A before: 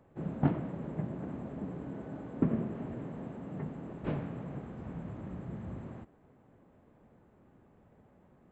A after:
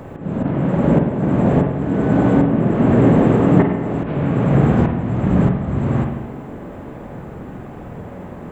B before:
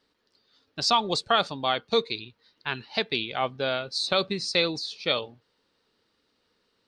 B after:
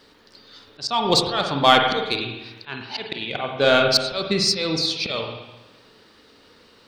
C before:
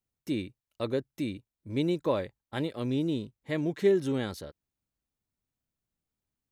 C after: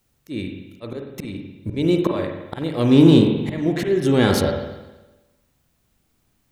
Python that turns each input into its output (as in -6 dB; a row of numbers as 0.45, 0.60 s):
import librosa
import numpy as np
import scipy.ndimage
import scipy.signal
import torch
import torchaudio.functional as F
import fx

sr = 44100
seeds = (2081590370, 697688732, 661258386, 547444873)

p1 = fx.auto_swell(x, sr, attack_ms=629.0)
p2 = 10.0 ** (-30.5 / 20.0) * np.tanh(p1 / 10.0 ** (-30.5 / 20.0))
p3 = p1 + F.gain(torch.from_numpy(p2), -3.0).numpy()
p4 = fx.rev_spring(p3, sr, rt60_s=1.1, pass_ms=(43, 50), chirp_ms=75, drr_db=2.5)
y = librosa.util.normalize(p4) * 10.0 ** (-1.5 / 20.0)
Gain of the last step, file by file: +23.0, +13.0, +15.5 dB